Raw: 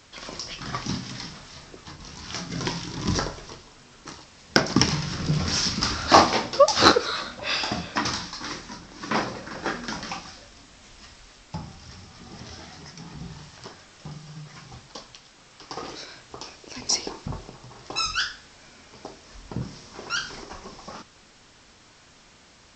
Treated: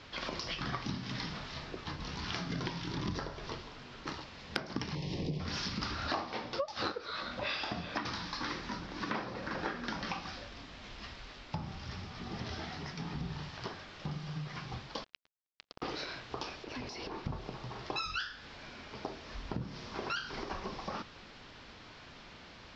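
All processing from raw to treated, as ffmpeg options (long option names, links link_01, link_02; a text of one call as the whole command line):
ffmpeg -i in.wav -filter_complex "[0:a]asettb=1/sr,asplit=3[link_01][link_02][link_03];[link_01]atrim=end=4.954[link_04];[link_02]atrim=start=4.95:end=5.4,asetpts=PTS-STARTPTS,afade=type=in:duration=0.004:curve=qsin,afade=type=out:start_time=0.446:duration=0.004:curve=qsin,asuperstop=centerf=1400:order=4:qfactor=1.2,equalizer=frequency=410:width_type=o:width=1.1:gain=8[link_05];[link_03]atrim=start=5.396[link_06];[link_04][link_05]acrossfade=duration=0.004:curve1=hsin:curve2=qsin[link_07];[link_07][link_06]acrossfade=duration=0.004:curve1=qsin:curve2=hsin,asettb=1/sr,asplit=3[link_08][link_09][link_10];[link_08]atrim=end=15.044[link_11];[link_09]atrim=start=15.04:end=15.82,asetpts=PTS-STARTPTS,afade=type=in:duration=0.004:curve=qsin,afade=type=out:start_time=0.776:duration=0.004:curve=qsin,acompressor=threshold=-43dB:ratio=16:attack=3.2:release=140:knee=1:detection=peak,afreqshift=-320,acrusher=bits=5:mix=0:aa=0.5[link_12];[link_10]atrim=start=15.816[link_13];[link_11][link_12]acrossfade=duration=0.004:curve1=hsin:curve2=qsin[link_14];[link_14][link_13]acrossfade=duration=0.004:curve1=qsin:curve2=hsin,asettb=1/sr,asplit=3[link_15][link_16][link_17];[link_15]atrim=end=16.644[link_18];[link_16]atrim=start=16.64:end=17.26,asetpts=PTS-STARTPTS,afade=type=in:duration=0.004:curve=qsin,afade=type=out:start_time=0.616:duration=0.004:curve=qsin,highshelf=frequency=4300:gain=-9,acompressor=threshold=-35dB:ratio=12:attack=3.2:release=140:knee=1:detection=peak,asoftclip=type=hard:threshold=-38dB[link_19];[link_17]atrim=start=17.256[link_20];[link_18][link_19]acrossfade=duration=0.004:curve1=hsin:curve2=qsin[link_21];[link_21][link_20]acrossfade=duration=0.004:curve1=qsin:curve2=hsin,lowpass=frequency=4500:width=0.5412,lowpass=frequency=4500:width=1.3066,acompressor=threshold=-36dB:ratio=8,volume=2dB" out.wav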